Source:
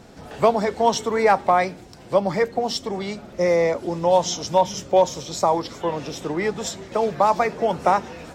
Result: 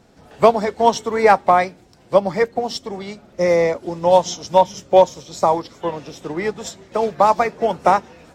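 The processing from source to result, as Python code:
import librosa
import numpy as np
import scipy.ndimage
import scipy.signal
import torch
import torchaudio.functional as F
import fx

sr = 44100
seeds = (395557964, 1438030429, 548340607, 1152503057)

y = fx.upward_expand(x, sr, threshold_db=-37.0, expansion=1.5)
y = y * 10.0 ** (5.5 / 20.0)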